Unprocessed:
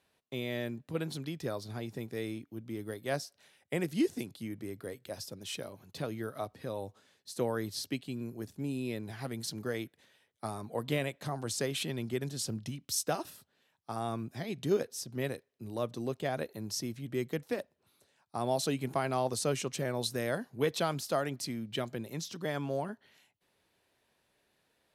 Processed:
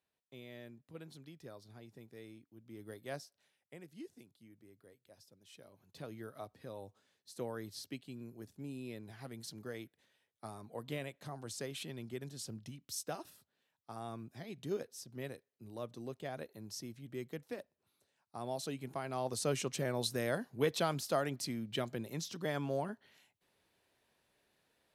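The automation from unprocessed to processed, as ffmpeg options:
ffmpeg -i in.wav -af "volume=10dB,afade=type=in:start_time=2.6:duration=0.35:silence=0.446684,afade=type=out:start_time=2.95:duration=0.83:silence=0.251189,afade=type=in:start_time=5.49:duration=0.64:silence=0.281838,afade=type=in:start_time=19.06:duration=0.52:silence=0.446684" out.wav

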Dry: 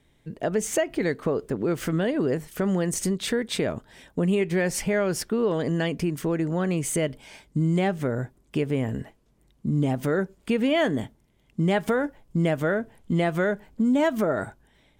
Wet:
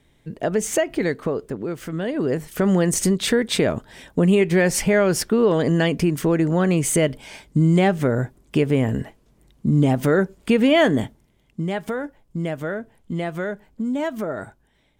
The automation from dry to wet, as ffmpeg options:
ffmpeg -i in.wav -af "volume=15dB,afade=type=out:start_time=0.98:duration=0.87:silence=0.375837,afade=type=in:start_time=1.85:duration=0.89:silence=0.266073,afade=type=out:start_time=11.03:duration=0.63:silence=0.334965" out.wav

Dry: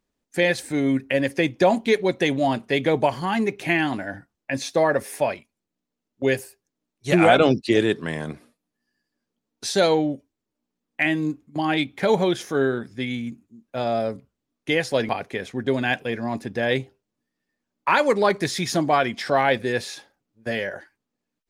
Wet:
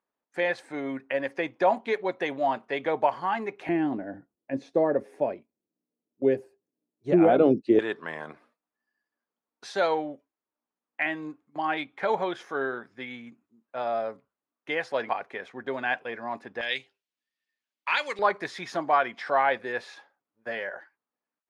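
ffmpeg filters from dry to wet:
ffmpeg -i in.wav -af "asetnsamples=nb_out_samples=441:pad=0,asendcmd='3.69 bandpass f 360;7.79 bandpass f 1100;16.61 bandpass f 3000;18.19 bandpass f 1100',bandpass=frequency=1000:width_type=q:width=1.2:csg=0" out.wav

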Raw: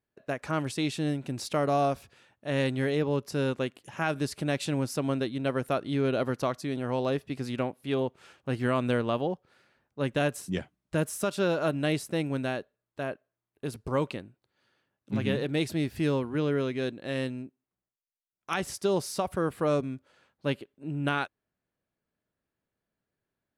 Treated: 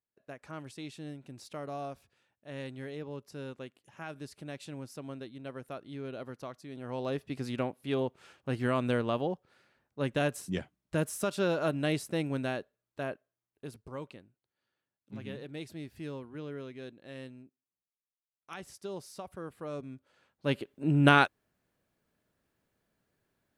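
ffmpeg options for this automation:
ffmpeg -i in.wav -af "volume=18.5dB,afade=type=in:start_time=6.68:duration=0.7:silence=0.281838,afade=type=out:start_time=13.06:duration=0.85:silence=0.281838,afade=type=in:start_time=19.72:duration=0.75:silence=0.266073,afade=type=in:start_time=20.47:duration=0.29:silence=0.334965" out.wav

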